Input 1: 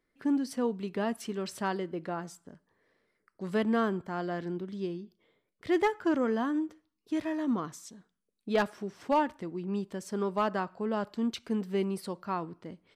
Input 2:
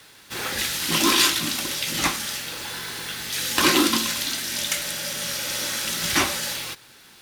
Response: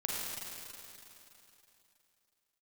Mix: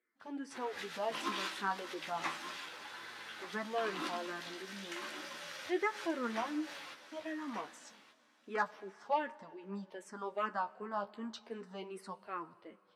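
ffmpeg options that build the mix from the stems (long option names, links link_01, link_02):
-filter_complex "[0:a]aemphasis=mode=production:type=cd,asplit=2[link_01][link_02];[link_02]afreqshift=-2.6[link_03];[link_01][link_03]amix=inputs=2:normalize=1,volume=3dB,asplit=3[link_04][link_05][link_06];[link_05]volume=-23.5dB[link_07];[1:a]adelay=200,volume=-8dB,asplit=3[link_08][link_09][link_10];[link_09]volume=-20dB[link_11];[link_10]volume=-13dB[link_12];[link_06]apad=whole_len=327169[link_13];[link_08][link_13]sidechaincompress=threshold=-37dB:ratio=8:attack=7:release=103[link_14];[2:a]atrim=start_sample=2205[link_15];[link_07][link_11]amix=inputs=2:normalize=0[link_16];[link_16][link_15]afir=irnorm=-1:irlink=0[link_17];[link_12]aecho=0:1:1181|2362|3543:1|0.21|0.0441[link_18];[link_04][link_14][link_17][link_18]amix=inputs=4:normalize=0,bandpass=frequency=1100:width_type=q:width=0.74:csg=0,flanger=delay=8.4:depth=7.1:regen=37:speed=0.32:shape=triangular"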